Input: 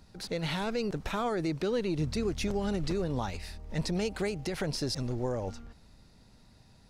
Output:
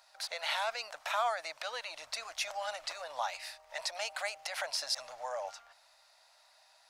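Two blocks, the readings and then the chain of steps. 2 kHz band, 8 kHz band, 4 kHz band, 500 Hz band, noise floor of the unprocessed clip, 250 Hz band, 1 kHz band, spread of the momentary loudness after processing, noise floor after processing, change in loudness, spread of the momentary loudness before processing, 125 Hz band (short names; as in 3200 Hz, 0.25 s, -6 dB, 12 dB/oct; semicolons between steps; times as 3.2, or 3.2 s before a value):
+3.0 dB, +2.0 dB, +2.0 dB, -8.5 dB, -59 dBFS, under -40 dB, +2.5 dB, 8 LU, -65 dBFS, -4.0 dB, 6 LU, under -40 dB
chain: elliptic high-pass 620 Hz, stop band 40 dB; gain +3 dB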